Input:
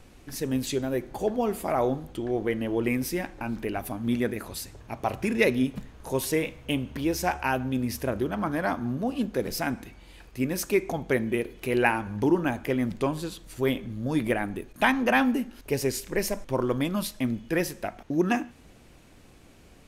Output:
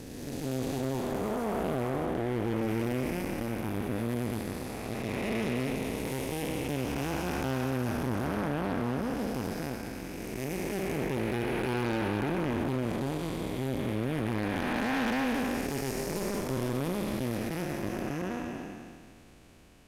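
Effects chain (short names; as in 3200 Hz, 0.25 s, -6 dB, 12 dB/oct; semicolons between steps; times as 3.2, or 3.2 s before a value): time blur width 0.781 s; added harmonics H 8 -18 dB, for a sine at -17.5 dBFS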